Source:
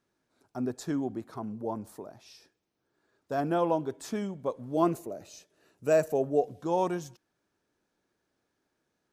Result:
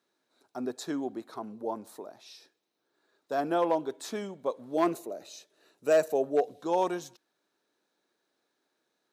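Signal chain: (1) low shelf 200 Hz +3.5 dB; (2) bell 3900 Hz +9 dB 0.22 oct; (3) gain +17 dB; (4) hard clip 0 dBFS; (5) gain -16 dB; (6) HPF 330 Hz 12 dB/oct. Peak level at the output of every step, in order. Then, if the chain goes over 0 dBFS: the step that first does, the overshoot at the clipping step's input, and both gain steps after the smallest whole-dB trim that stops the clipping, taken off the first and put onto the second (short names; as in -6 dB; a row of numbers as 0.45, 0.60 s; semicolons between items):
-11.0, -11.0, +6.0, 0.0, -16.0, -13.0 dBFS; step 3, 6.0 dB; step 3 +11 dB, step 5 -10 dB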